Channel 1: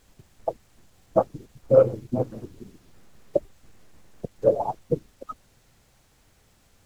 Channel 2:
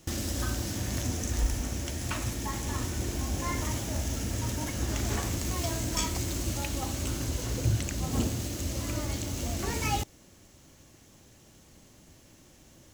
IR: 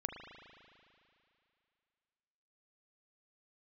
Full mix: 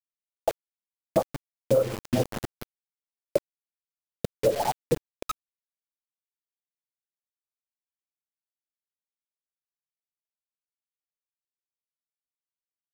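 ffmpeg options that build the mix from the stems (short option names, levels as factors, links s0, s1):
-filter_complex "[0:a]volume=1.33,asplit=3[s0][s1][s2];[s1]volume=0.075[s3];[1:a]asoftclip=type=hard:threshold=0.0282,volume=0.335[s4];[s2]apad=whole_len=570297[s5];[s4][s5]sidechaincompress=threshold=0.00355:ratio=3:attack=16:release=694[s6];[2:a]atrim=start_sample=2205[s7];[s3][s7]afir=irnorm=-1:irlink=0[s8];[s0][s6][s8]amix=inputs=3:normalize=0,acrusher=bits=4:mix=0:aa=0.000001,acompressor=threshold=0.112:ratio=6"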